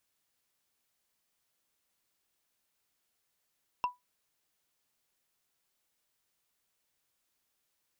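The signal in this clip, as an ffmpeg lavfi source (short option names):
-f lavfi -i "aevalsrc='0.0708*pow(10,-3*t/0.17)*sin(2*PI*987*t)+0.0237*pow(10,-3*t/0.05)*sin(2*PI*2721.2*t)+0.00794*pow(10,-3*t/0.022)*sin(2*PI*5333.7*t)+0.00266*pow(10,-3*t/0.012)*sin(2*PI*8816.9*t)+0.000891*pow(10,-3*t/0.008)*sin(2*PI*13166.6*t)':d=0.45:s=44100"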